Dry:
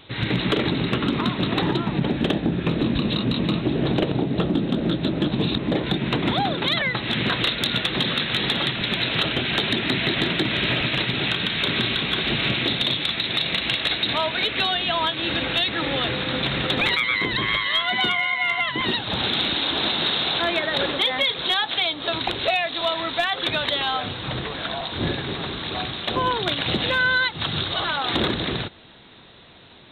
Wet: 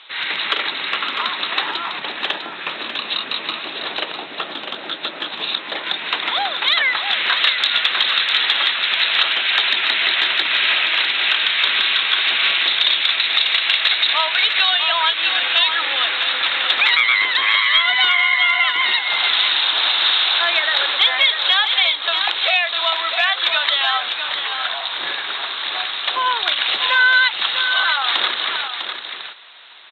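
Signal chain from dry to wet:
flat-topped band-pass 2,200 Hz, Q 0.58
single-tap delay 651 ms −7.5 dB
level +7 dB

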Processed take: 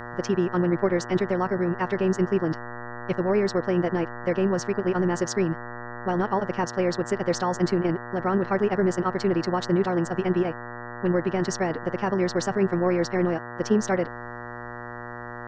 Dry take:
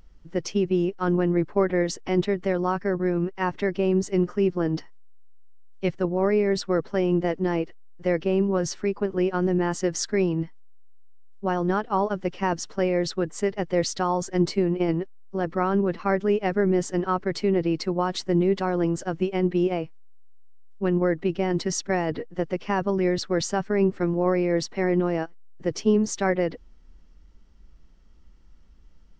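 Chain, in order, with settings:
phase-vocoder stretch with locked phases 0.53×
hum with harmonics 120 Hz, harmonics 16, −37 dBFS −1 dB per octave

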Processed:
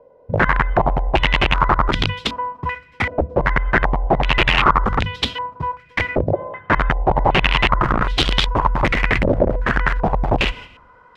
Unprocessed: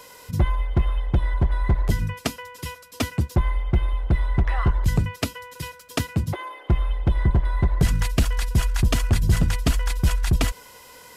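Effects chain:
noise gate −39 dBFS, range −12 dB
downward compressor 5 to 1, threshold −20 dBFS, peak gain reduction 7 dB
four-comb reverb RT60 1.3 s, combs from 28 ms, DRR 19 dB
wrap-around overflow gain 19 dB
low-pass on a step sequencer 2.6 Hz 590–3,500 Hz
level +6 dB

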